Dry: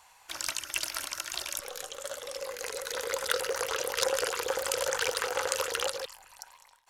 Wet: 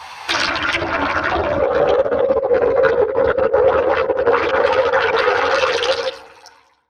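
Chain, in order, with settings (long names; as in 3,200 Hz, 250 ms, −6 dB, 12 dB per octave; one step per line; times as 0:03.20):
fade-out on the ending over 1.71 s
source passing by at 0:02.01, 6 m/s, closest 3.5 metres
in parallel at −6.5 dB: wrap-around overflow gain 27 dB
on the sum: treble cut that deepens with the level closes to 610 Hz, closed at −33.5 dBFS
Savitzky-Golay smoothing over 15 samples
feedback delay network reverb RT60 1.1 s, low-frequency decay 1.55×, high-frequency decay 0.4×, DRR 12 dB
compressor whose output falls as the input rises −44 dBFS, ratio −0.5
high-pass filter 73 Hz
notch filter 2,900 Hz, Q 26
boost into a limiter +34 dB
string-ensemble chorus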